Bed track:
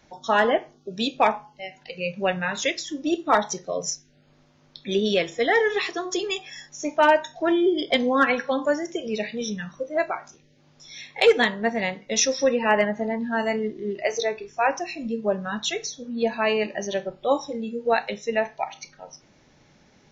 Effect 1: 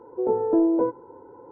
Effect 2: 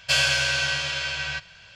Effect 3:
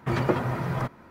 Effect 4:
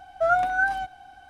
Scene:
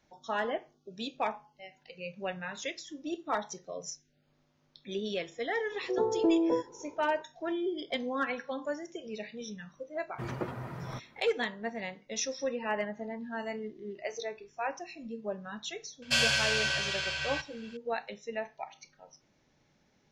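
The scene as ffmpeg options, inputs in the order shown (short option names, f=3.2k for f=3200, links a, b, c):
-filter_complex "[0:a]volume=-12.5dB[a];[1:a]atrim=end=1.51,asetpts=PTS-STARTPTS,volume=-6dB,afade=t=in:d=0.004:c=hsin,afade=t=out:st=1.506:d=0.004:c=hsin,adelay=5710[b];[3:a]atrim=end=1.1,asetpts=PTS-STARTPTS,volume=-12dB,afade=t=in:d=0.004:c=hsin,afade=t=out:st=1.096:d=0.004:c=hsin,adelay=10120[c];[2:a]atrim=end=1.75,asetpts=PTS-STARTPTS,volume=-5.5dB,afade=t=in:d=0.004:c=hsin,afade=t=out:st=1.746:d=0.004:c=hsin,adelay=16020[d];[a][b][c][d]amix=inputs=4:normalize=0"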